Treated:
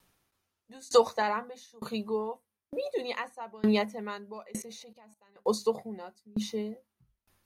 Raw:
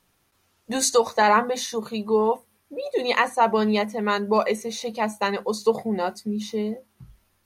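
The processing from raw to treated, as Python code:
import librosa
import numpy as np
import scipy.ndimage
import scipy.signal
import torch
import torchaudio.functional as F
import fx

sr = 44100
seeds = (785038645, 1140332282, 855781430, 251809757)

y = fx.level_steps(x, sr, step_db=20, at=(4.62, 5.36))
y = fx.tremolo_decay(y, sr, direction='decaying', hz=1.1, depth_db=29)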